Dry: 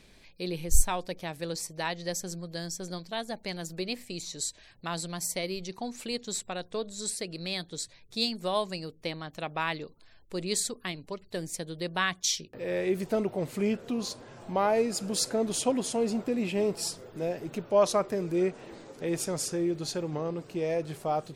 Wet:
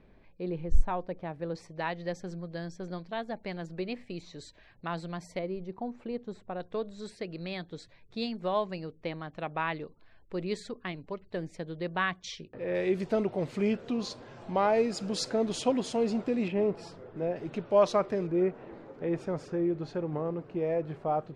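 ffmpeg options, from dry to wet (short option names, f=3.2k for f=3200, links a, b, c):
-af "asetnsamples=n=441:p=0,asendcmd='1.55 lowpass f 2200;5.39 lowpass f 1100;6.6 lowpass f 2200;12.75 lowpass f 4700;16.48 lowpass f 1900;17.36 lowpass f 3700;18.27 lowpass f 1700',lowpass=1.3k"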